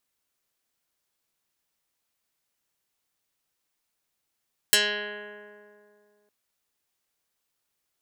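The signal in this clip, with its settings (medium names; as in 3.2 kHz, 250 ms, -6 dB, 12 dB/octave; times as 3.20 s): plucked string G#3, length 1.56 s, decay 2.52 s, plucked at 0.17, dark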